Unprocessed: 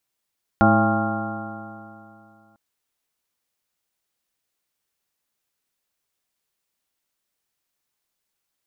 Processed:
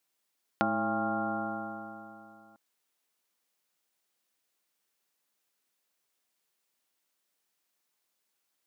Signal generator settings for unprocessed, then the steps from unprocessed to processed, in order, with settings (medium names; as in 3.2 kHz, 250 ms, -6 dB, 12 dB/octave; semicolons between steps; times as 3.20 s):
stretched partials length 1.95 s, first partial 106 Hz, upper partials 4.5/0/-17/-4.5/0/3/-16/-5.5/-12.5/1.5 dB, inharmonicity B 0.0035, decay 2.65 s, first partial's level -20.5 dB
high-pass 190 Hz 12 dB/octave; compression 6:1, threshold -27 dBFS